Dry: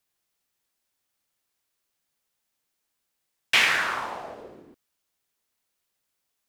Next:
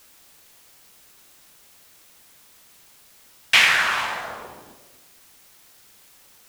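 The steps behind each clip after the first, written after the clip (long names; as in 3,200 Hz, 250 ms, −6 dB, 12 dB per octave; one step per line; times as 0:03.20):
parametric band 350 Hz −7.5 dB 1.6 octaves
reverb whose tail is shaped and stops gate 480 ms flat, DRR 9.5 dB
background noise white −58 dBFS
level +5 dB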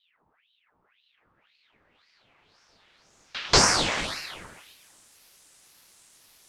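echo ahead of the sound 187 ms −19 dB
low-pass filter sweep 400 Hz → 8,500 Hz, 0:00.66–0:04.21
ring modulator whose carrier an LFO sweeps 2,000 Hz, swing 75%, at 1.9 Hz
level −2.5 dB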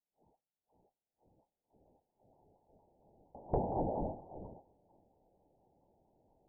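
Butterworth low-pass 870 Hz 96 dB per octave
downward compressor 5 to 1, threshold −30 dBFS, peak gain reduction 11.5 dB
pitch modulation by a square or saw wave saw down 4.3 Hz, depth 100 cents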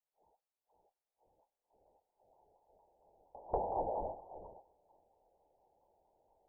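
octave-band graphic EQ 125/250/500/1,000 Hz −9/−9/+5/+8 dB
level −5 dB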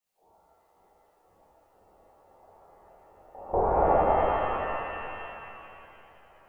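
reverb with rising layers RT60 2.9 s, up +7 semitones, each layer −8 dB, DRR −11.5 dB
level +3.5 dB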